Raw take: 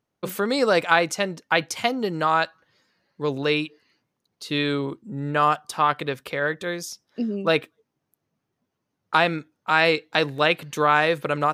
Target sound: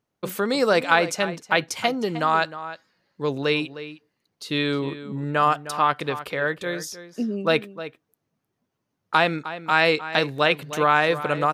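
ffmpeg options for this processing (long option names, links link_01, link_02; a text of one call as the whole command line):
ffmpeg -i in.wav -filter_complex "[0:a]asplit=2[link_01][link_02];[link_02]adelay=309,volume=-13dB,highshelf=frequency=4000:gain=-6.95[link_03];[link_01][link_03]amix=inputs=2:normalize=0" out.wav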